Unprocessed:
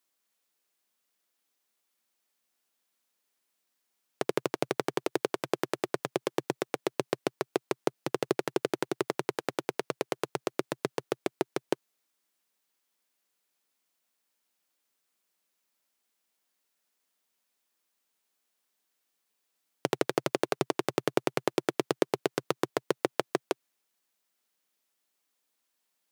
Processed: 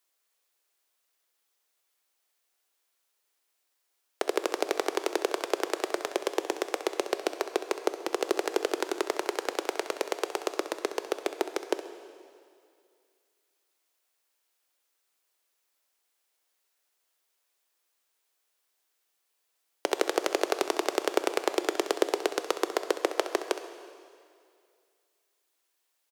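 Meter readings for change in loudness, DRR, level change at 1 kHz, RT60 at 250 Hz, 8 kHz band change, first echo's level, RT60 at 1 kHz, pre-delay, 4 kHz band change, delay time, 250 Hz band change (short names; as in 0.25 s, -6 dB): +2.0 dB, 8.5 dB, +3.0 dB, 2.3 s, +5.0 dB, -13.0 dB, 2.3 s, 7 ms, +4.0 dB, 66 ms, -1.0 dB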